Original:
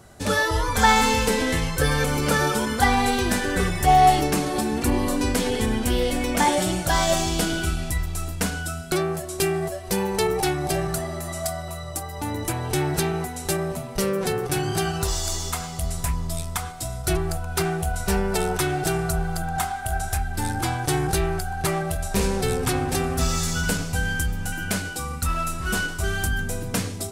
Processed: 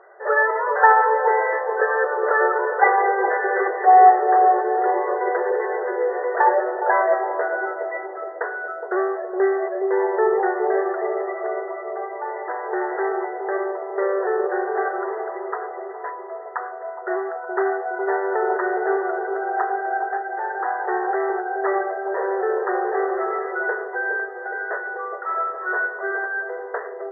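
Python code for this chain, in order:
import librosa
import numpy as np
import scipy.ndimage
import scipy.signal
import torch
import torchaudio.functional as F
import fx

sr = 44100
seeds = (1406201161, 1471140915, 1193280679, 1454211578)

y = fx.brickwall_bandpass(x, sr, low_hz=360.0, high_hz=2000.0)
y = fx.echo_bbd(y, sr, ms=415, stages=2048, feedback_pct=61, wet_db=-5)
y = y * 10.0 ** (4.5 / 20.0)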